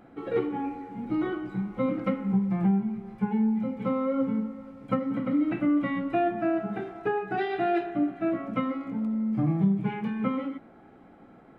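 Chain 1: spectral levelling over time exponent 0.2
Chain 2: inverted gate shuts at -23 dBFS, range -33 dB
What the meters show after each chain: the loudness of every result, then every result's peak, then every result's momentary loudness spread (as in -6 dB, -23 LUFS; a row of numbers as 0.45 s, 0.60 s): -19.5 LUFS, -40.5 LUFS; -6.0 dBFS, -21.5 dBFS; 2 LU, 21 LU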